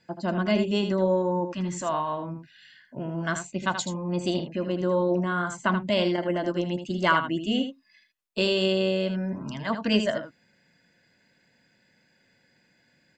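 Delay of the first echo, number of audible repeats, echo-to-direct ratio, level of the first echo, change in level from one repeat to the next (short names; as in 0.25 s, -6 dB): 79 ms, 1, -8.5 dB, -8.5 dB, no steady repeat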